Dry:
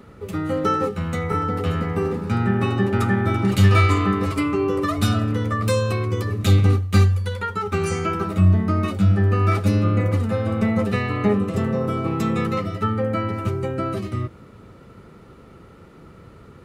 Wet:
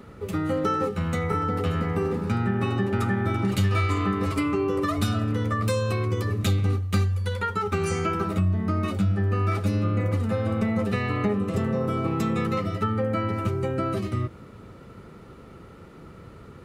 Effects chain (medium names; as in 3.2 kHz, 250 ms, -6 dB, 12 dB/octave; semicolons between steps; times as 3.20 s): compression 3:1, threshold -22 dBFS, peak gain reduction 9.5 dB